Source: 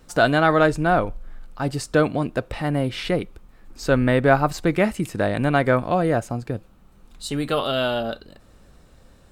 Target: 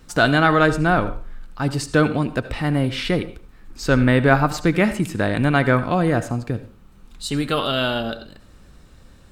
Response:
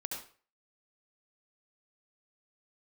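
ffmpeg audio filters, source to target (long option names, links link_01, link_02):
-filter_complex "[0:a]equalizer=frequency=610:width=1.2:gain=-6,asplit=2[link_01][link_02];[1:a]atrim=start_sample=2205,lowpass=8600[link_03];[link_02][link_03]afir=irnorm=-1:irlink=0,volume=-9dB[link_04];[link_01][link_04]amix=inputs=2:normalize=0,volume=2dB"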